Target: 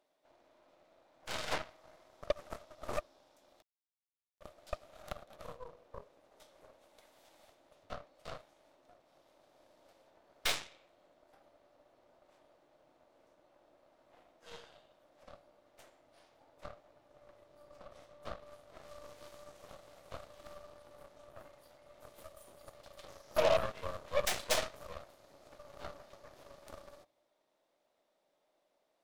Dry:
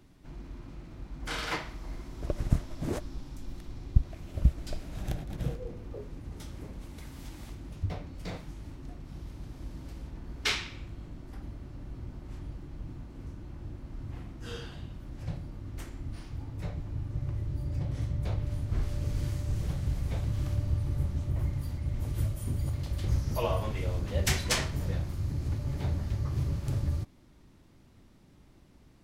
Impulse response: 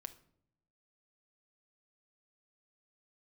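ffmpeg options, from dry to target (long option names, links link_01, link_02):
-filter_complex "[0:a]highpass=frequency=600:width_type=q:width=4.6,asplit=2[link_01][link_02];[link_02]equalizer=frequency=3600:width_type=o:width=0.42:gain=12[link_03];[1:a]atrim=start_sample=2205,asetrate=40131,aresample=44100[link_04];[link_03][link_04]afir=irnorm=-1:irlink=0,volume=-6dB[link_05];[link_01][link_05]amix=inputs=2:normalize=0,aeval=exprs='0.447*(cos(1*acos(clip(val(0)/0.447,-1,1)))-cos(1*PI/2))+0.0282*(cos(3*acos(clip(val(0)/0.447,-1,1)))-cos(3*PI/2))+0.0447*(cos(7*acos(clip(val(0)/0.447,-1,1)))-cos(7*PI/2))+0.0316*(cos(8*acos(clip(val(0)/0.447,-1,1)))-cos(8*PI/2))':channel_layout=same,asoftclip=type=tanh:threshold=-23dB,asettb=1/sr,asplit=3[link_06][link_07][link_08];[link_06]atrim=end=3.624[link_09];[link_07]atrim=start=3.62:end=4.41,asetpts=PTS-STARTPTS,afade=type=in:duration=0.004:curve=qsin,afade=type=out:start_time=0.786:duration=0.004:curve=qsin,acrusher=bits=3:mix=0:aa=0.5[link_10];[link_08]atrim=start=4.406[link_11];[link_09][link_10]acrossfade=duration=0.004:curve1=hsin:curve2=qsin[link_12];[link_12][link_11]acrossfade=duration=0.004:curve1=qsin:curve2=hsin,volume=1.5dB"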